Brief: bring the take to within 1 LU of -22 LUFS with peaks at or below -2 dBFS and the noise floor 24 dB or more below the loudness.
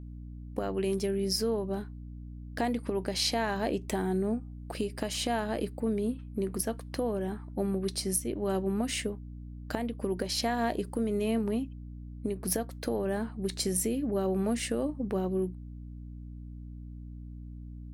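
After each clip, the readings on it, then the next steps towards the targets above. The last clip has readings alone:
hum 60 Hz; highest harmonic 300 Hz; hum level -41 dBFS; loudness -31.5 LUFS; peak level -14.0 dBFS; loudness target -22.0 LUFS
-> hum notches 60/120/180/240/300 Hz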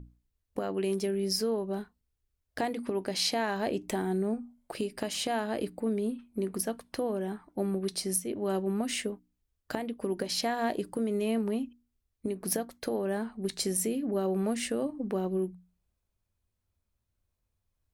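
hum not found; loudness -32.0 LUFS; peak level -14.5 dBFS; loudness target -22.0 LUFS
-> trim +10 dB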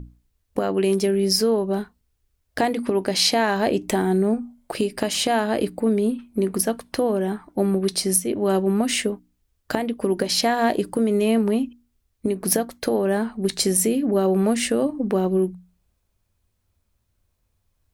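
loudness -22.0 LUFS; peak level -4.5 dBFS; noise floor -72 dBFS

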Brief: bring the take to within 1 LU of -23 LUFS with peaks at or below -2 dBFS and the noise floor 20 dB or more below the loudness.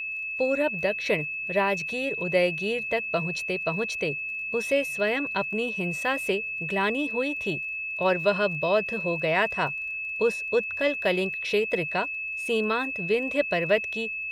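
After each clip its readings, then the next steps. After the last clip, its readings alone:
tick rate 21 per s; steady tone 2.6 kHz; tone level -30 dBFS; loudness -26.0 LUFS; peak level -9.0 dBFS; loudness target -23.0 LUFS
-> de-click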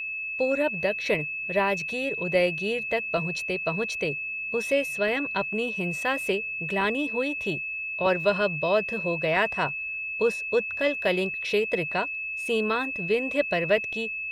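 tick rate 0.28 per s; steady tone 2.6 kHz; tone level -30 dBFS
-> band-stop 2.6 kHz, Q 30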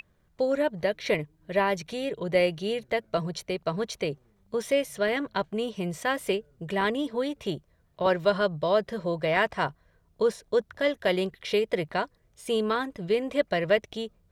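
steady tone not found; loudness -28.0 LUFS; peak level -10.0 dBFS; loudness target -23.0 LUFS
-> trim +5 dB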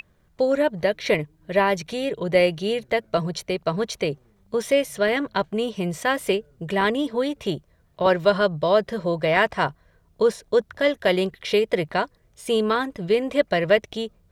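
loudness -23.0 LUFS; peak level -5.0 dBFS; noise floor -61 dBFS

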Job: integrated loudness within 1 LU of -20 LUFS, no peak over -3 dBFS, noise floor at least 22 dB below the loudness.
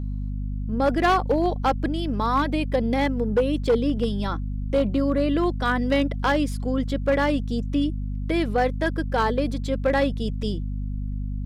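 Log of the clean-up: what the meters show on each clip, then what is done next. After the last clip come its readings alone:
clipped samples 0.9%; clipping level -14.0 dBFS; hum 50 Hz; highest harmonic 250 Hz; hum level -26 dBFS; loudness -24.0 LUFS; peak level -14.0 dBFS; loudness target -20.0 LUFS
-> clip repair -14 dBFS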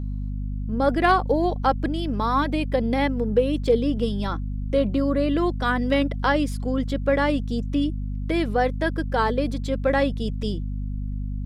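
clipped samples 0.0%; hum 50 Hz; highest harmonic 250 Hz; hum level -26 dBFS
-> de-hum 50 Hz, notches 5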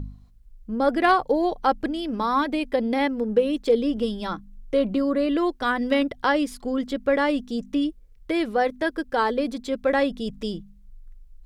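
hum not found; loudness -24.0 LUFS; peak level -6.0 dBFS; loudness target -20.0 LUFS
-> trim +4 dB; peak limiter -3 dBFS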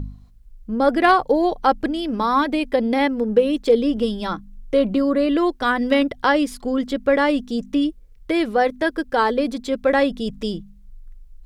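loudness -20.0 LUFS; peak level -3.0 dBFS; noise floor -46 dBFS

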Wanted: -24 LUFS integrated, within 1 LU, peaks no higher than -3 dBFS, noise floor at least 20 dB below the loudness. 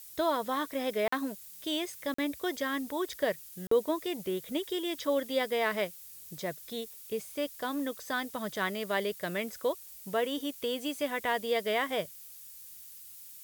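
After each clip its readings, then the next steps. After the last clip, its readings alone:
dropouts 3; longest dropout 44 ms; noise floor -49 dBFS; noise floor target -53 dBFS; loudness -33.0 LUFS; peak level -16.0 dBFS; loudness target -24.0 LUFS
-> interpolate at 1.08/2.14/3.67 s, 44 ms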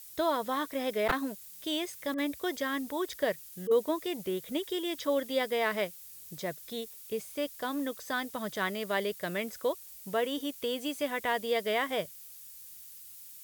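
dropouts 0; noise floor -49 dBFS; noise floor target -53 dBFS
-> noise reduction 6 dB, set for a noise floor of -49 dBFS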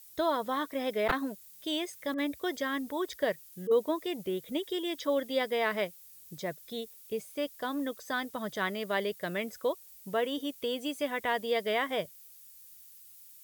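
noise floor -54 dBFS; loudness -33.0 LUFS; peak level -15.5 dBFS; loudness target -24.0 LUFS
-> trim +9 dB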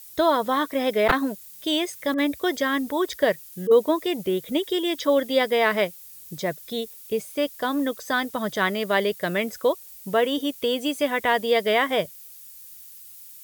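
loudness -24.0 LUFS; peak level -6.5 dBFS; noise floor -45 dBFS

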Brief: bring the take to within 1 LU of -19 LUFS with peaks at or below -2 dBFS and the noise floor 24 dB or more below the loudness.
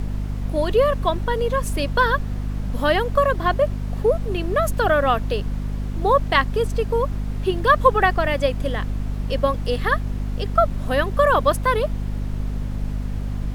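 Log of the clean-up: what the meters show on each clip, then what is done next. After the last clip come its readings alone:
hum 50 Hz; highest harmonic 250 Hz; hum level -23 dBFS; noise floor -28 dBFS; noise floor target -46 dBFS; loudness -21.5 LUFS; peak level -1.5 dBFS; loudness target -19.0 LUFS
-> hum notches 50/100/150/200/250 Hz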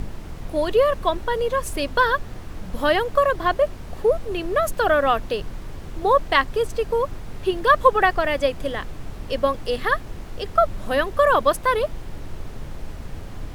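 hum not found; noise floor -36 dBFS; noise floor target -46 dBFS
-> noise print and reduce 10 dB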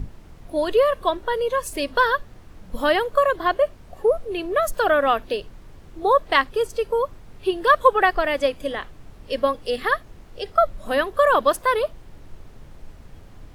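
noise floor -45 dBFS; noise floor target -46 dBFS
-> noise print and reduce 6 dB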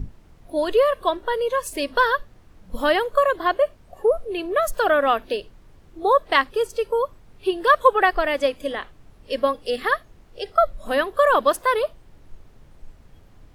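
noise floor -51 dBFS; loudness -21.5 LUFS; peak level -2.5 dBFS; loudness target -19.0 LUFS
-> trim +2.5 dB; peak limiter -2 dBFS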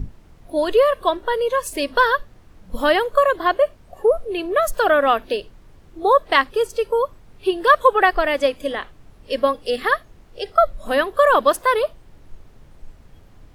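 loudness -19.0 LUFS; peak level -2.0 dBFS; noise floor -49 dBFS

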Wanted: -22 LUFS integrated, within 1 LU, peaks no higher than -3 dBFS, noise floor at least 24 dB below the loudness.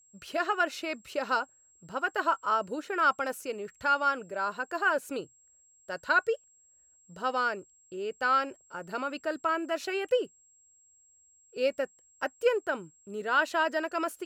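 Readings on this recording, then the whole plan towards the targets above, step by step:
steady tone 7.6 kHz; tone level -60 dBFS; loudness -30.0 LUFS; peak level -13.0 dBFS; loudness target -22.0 LUFS
-> band-stop 7.6 kHz, Q 30; trim +8 dB

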